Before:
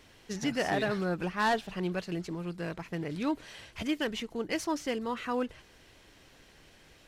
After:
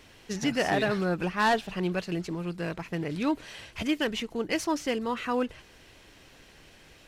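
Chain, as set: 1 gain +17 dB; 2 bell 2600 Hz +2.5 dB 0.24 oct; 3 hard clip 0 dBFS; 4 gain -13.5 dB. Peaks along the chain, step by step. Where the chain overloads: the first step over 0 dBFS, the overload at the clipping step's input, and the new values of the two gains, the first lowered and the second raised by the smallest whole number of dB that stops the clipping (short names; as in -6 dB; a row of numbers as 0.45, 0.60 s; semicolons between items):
-4.0, -3.0, -3.0, -16.5 dBFS; no overload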